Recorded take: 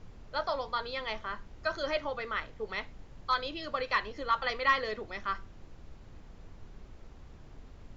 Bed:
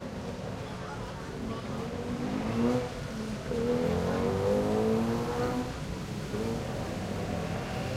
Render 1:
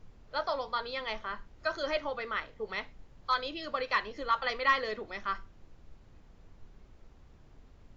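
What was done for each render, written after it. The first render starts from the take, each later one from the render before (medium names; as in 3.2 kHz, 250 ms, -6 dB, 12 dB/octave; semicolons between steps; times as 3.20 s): noise print and reduce 6 dB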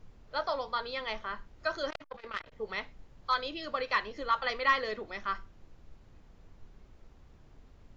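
1.90–2.52 s: transformer saturation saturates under 1.6 kHz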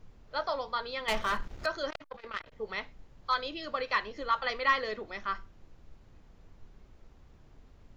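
1.08–1.66 s: waveshaping leveller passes 3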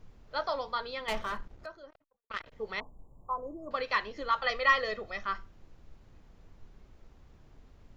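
0.65–2.30 s: studio fade out; 2.80–3.71 s: Chebyshev band-stop 1.1–7.5 kHz, order 5; 4.44–5.24 s: comb 1.6 ms, depth 53%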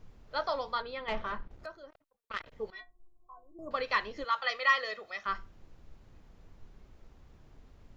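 0.82–1.51 s: distance through air 210 m; 2.70–3.59 s: inharmonic resonator 350 Hz, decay 0.2 s, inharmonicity 0.008; 4.24–5.26 s: high-pass 890 Hz 6 dB/octave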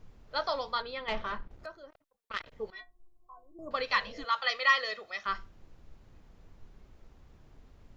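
3.94–4.24 s: spectral replace 330–710 Hz; dynamic bell 4.3 kHz, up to +5 dB, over -49 dBFS, Q 0.8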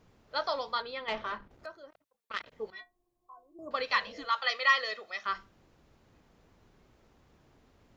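high-pass 150 Hz 6 dB/octave; hum notches 50/100/150/200 Hz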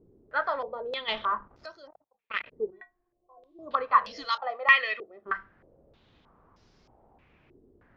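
step-sequenced low-pass 3.2 Hz 380–5200 Hz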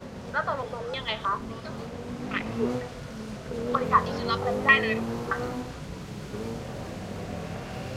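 add bed -2 dB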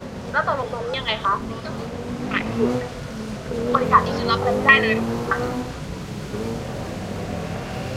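trim +7 dB; peak limiter -2 dBFS, peak gain reduction 2 dB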